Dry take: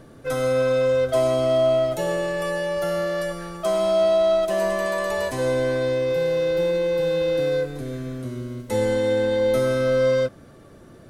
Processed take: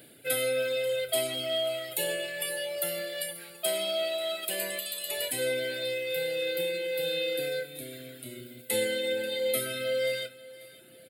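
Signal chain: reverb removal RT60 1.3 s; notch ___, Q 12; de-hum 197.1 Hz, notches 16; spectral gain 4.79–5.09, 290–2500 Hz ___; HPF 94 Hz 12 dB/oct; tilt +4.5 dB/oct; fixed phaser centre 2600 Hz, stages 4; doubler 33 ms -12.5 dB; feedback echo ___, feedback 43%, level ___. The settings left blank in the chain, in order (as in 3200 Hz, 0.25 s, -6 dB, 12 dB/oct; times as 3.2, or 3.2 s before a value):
1800 Hz, -11 dB, 0.537 s, -19.5 dB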